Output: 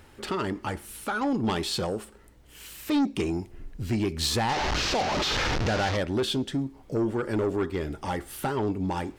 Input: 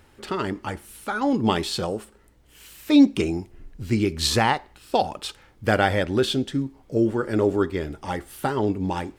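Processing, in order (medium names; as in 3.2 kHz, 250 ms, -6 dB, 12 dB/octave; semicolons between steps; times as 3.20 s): 4.49–5.97 s: one-bit delta coder 32 kbps, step -18.5 dBFS; in parallel at +2.5 dB: compression, threshold -30 dBFS, peak gain reduction 18.5 dB; on the sum: saturation -15 dBFS, distortion -11 dB; trim -5 dB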